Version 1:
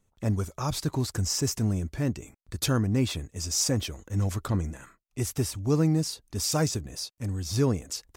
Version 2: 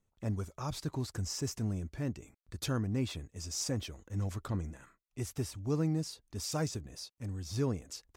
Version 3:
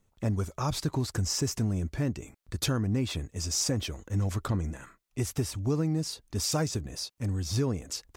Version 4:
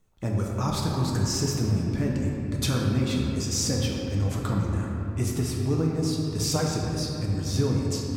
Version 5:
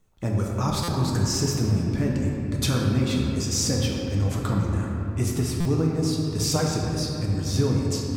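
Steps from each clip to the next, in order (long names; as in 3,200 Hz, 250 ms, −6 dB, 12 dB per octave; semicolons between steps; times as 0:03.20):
high-shelf EQ 7,000 Hz −5.5 dB; level −8 dB
downward compressor, threshold −33 dBFS, peak gain reduction 7 dB; level +9 dB
convolution reverb RT60 3.2 s, pre-delay 6 ms, DRR −2 dB
buffer that repeats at 0:00.83/0:05.60, samples 256, times 8; level +2 dB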